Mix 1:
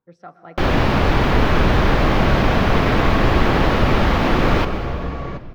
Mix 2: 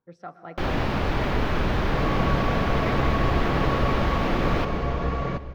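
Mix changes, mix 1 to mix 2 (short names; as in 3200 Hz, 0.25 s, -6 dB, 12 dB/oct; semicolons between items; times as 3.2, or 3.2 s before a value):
first sound -8.5 dB; second sound: send on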